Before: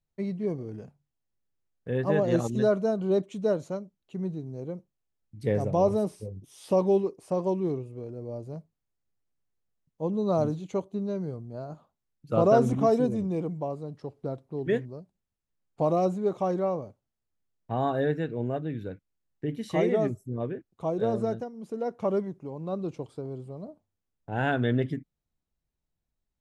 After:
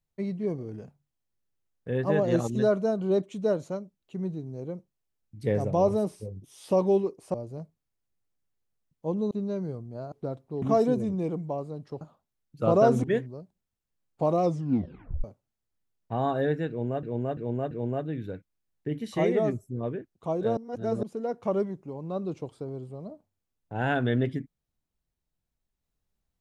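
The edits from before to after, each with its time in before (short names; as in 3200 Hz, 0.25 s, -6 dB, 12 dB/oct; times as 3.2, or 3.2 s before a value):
7.34–8.3 cut
10.27–10.9 cut
11.71–12.74 swap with 14.13–14.63
16.01 tape stop 0.82 s
18.28–18.62 loop, 4 plays
21.14–21.6 reverse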